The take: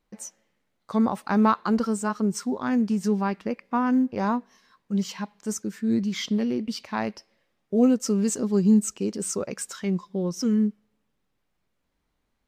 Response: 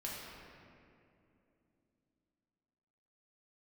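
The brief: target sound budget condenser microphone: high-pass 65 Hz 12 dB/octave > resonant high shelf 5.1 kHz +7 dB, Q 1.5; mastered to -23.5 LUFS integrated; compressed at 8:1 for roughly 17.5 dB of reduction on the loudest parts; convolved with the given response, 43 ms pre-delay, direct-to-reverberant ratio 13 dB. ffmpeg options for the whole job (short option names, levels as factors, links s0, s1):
-filter_complex "[0:a]acompressor=threshold=0.0224:ratio=8,asplit=2[s0][s1];[1:a]atrim=start_sample=2205,adelay=43[s2];[s1][s2]afir=irnorm=-1:irlink=0,volume=0.2[s3];[s0][s3]amix=inputs=2:normalize=0,highpass=65,highshelf=f=5100:t=q:w=1.5:g=7,volume=3.76"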